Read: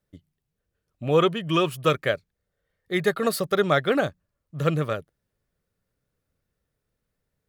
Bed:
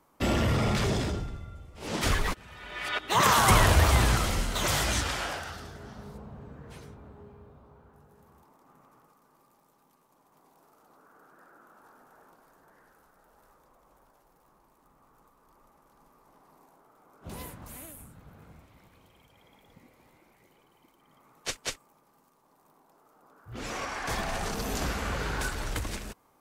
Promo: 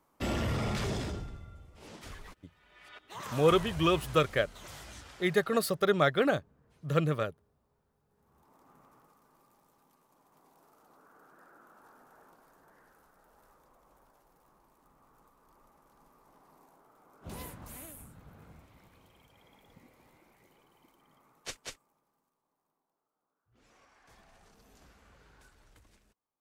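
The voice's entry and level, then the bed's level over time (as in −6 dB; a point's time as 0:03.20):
2.30 s, −4.5 dB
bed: 0:01.74 −6 dB
0:02.00 −20.5 dB
0:08.00 −20.5 dB
0:08.56 −2 dB
0:20.98 −2 dB
0:23.51 −29 dB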